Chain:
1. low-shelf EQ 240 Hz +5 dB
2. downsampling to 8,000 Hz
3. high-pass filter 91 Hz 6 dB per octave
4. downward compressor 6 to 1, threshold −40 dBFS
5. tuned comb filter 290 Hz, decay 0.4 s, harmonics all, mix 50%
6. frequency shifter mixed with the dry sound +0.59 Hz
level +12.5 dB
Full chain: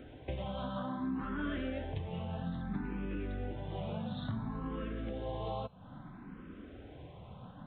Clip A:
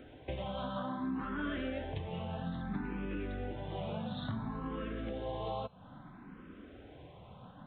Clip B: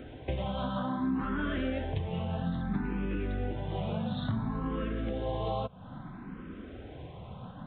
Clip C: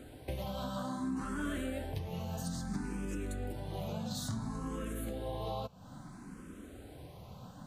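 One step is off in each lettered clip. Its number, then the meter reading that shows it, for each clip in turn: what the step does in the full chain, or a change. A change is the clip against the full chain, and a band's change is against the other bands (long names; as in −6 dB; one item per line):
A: 1, 125 Hz band −3.0 dB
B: 5, change in integrated loudness +5.5 LU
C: 2, 4 kHz band +3.5 dB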